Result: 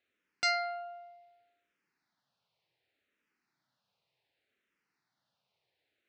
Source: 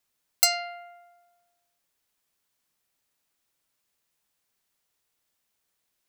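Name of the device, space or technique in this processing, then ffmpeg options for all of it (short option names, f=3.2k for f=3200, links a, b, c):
barber-pole phaser into a guitar amplifier: -filter_complex "[0:a]asplit=2[a][b];[b]afreqshift=-0.67[c];[a][c]amix=inputs=2:normalize=1,asoftclip=type=tanh:threshold=-18.5dB,highpass=110,equalizer=f=130:t=q:w=4:g=4,equalizer=f=1.1k:t=q:w=4:g=-5,equalizer=f=3.2k:t=q:w=4:g=-4,lowpass=f=4.1k:w=0.5412,lowpass=f=4.1k:w=1.3066,volume=5dB"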